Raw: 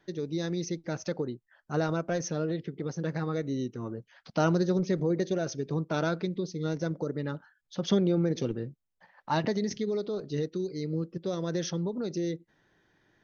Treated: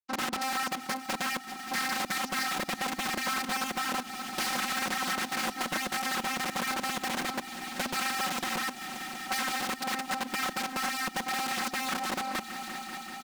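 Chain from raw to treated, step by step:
sub-harmonics by changed cycles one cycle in 2, inverted
bit-depth reduction 6 bits, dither none
channel vocoder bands 32, square 263 Hz
low-shelf EQ 330 Hz +11 dB
leveller curve on the samples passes 2
wrap-around overflow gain 21 dB
echo machine with several playback heads 193 ms, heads all three, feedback 72%, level −22 dB
downward compressor 6 to 1, threshold −32 dBFS, peak gain reduction 9 dB
comb filter 5.4 ms, depth 88%
highs frequency-modulated by the lows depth 0.47 ms

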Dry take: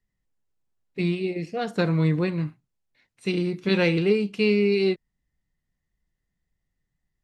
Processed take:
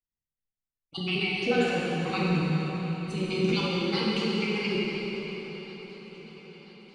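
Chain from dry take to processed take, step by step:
time-frequency cells dropped at random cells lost 36%
Bessel low-pass filter 4,400 Hz, order 2
downward expander −56 dBFS
compressor whose output falls as the input rises −35 dBFS, ratio −1
brickwall limiter −25 dBFS, peak gain reduction 11.5 dB
on a send: feedback echo with a long and a short gap by turns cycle 1,031 ms, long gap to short 3 to 1, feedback 62%, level −20 dB
on the sum: dense smooth reverb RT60 4.5 s, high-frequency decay 0.8×, DRR −6.5 dB
wrong playback speed 24 fps film run at 25 fps
level +2 dB

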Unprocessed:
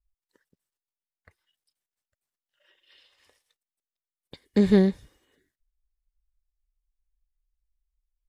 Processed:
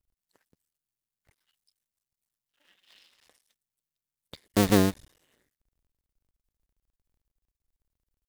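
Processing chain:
sub-harmonics by changed cycles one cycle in 2, muted
high-shelf EQ 4,400 Hz +8 dB

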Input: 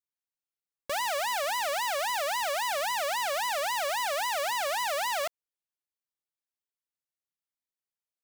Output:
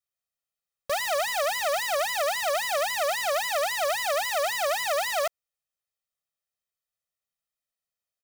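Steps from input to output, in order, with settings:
comb filter 1.6 ms, depth 97%

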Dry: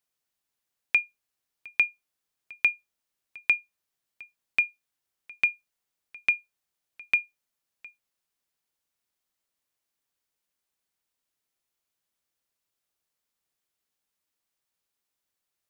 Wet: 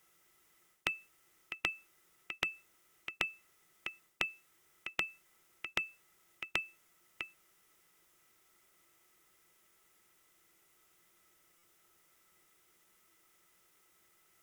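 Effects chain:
thirty-one-band graphic EQ 160 Hz +5 dB, 250 Hz −11 dB, 4,000 Hz −7 dB
reversed playback
downward compressor 6 to 1, threshold −28 dBFS, peak gain reduction 11 dB
reversed playback
wrong playback speed 44.1 kHz file played as 48 kHz
hollow resonant body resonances 340/1,300/2,000 Hz, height 13 dB, ringing for 45 ms
buffer that repeats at 0:11.58, samples 256, times 8
every bin compressed towards the loudest bin 2 to 1
level +5.5 dB

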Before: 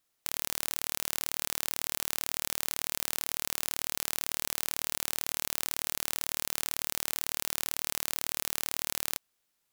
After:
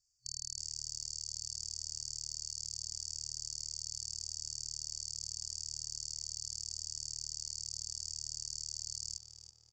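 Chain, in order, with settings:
elliptic low-pass filter 7,300 Hz, stop band 40 dB
parametric band 2,700 Hz +7.5 dB 1.3 octaves
comb filter 2.4 ms, depth 77%
brick-wall band-stop 120–4,500 Hz
brickwall limiter −26 dBFS, peak gain reduction 6 dB
on a send: tape delay 330 ms, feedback 69%, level −3 dB, low-pass 2,400 Hz
on the sum: level +3 dB

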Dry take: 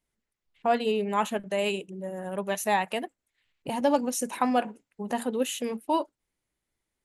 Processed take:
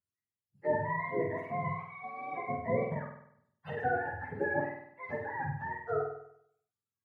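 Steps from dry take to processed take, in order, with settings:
frequency axis turned over on the octave scale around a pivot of 650 Hz
noise reduction from a noise print of the clip's start 11 dB
flutter between parallel walls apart 8.4 metres, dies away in 0.69 s
level −6 dB

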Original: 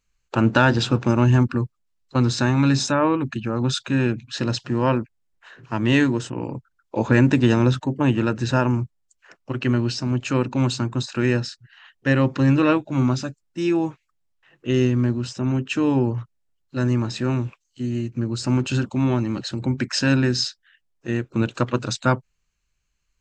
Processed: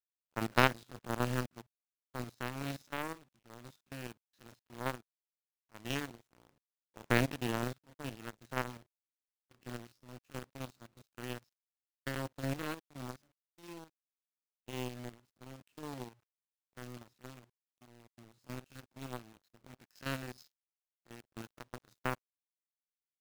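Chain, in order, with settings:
spectrum averaged block by block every 50 ms
bit reduction 5 bits
power curve on the samples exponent 3
level −2.5 dB

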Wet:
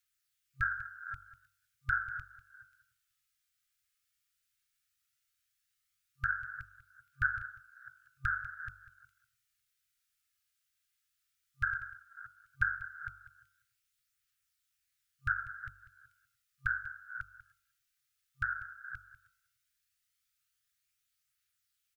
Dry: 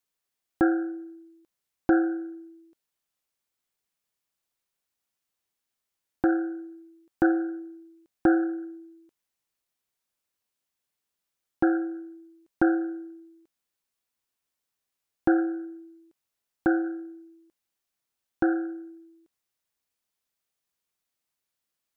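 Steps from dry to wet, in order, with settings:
delay that plays each chunk backwards 292 ms, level −10.5 dB
hum removal 48.13 Hz, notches 32
brick-wall band-stop 130–1,200 Hz
phase shifter 0.14 Hz, delay 2.6 ms, feedback 23%
on a send: single-tap delay 195 ms −15 dB
on the sum: level +2 dB

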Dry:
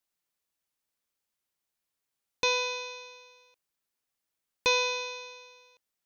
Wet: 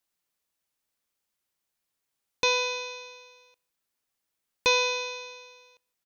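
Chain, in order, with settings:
slap from a distant wall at 27 metres, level −29 dB
level +2.5 dB

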